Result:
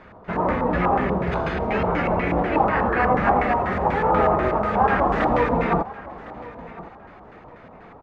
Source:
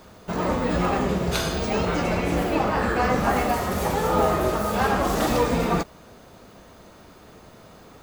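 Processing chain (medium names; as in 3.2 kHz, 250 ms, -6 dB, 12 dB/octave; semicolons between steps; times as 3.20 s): LFO low-pass square 4.1 Hz 940–2000 Hz; feedback delay 1059 ms, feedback 27%, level -18 dB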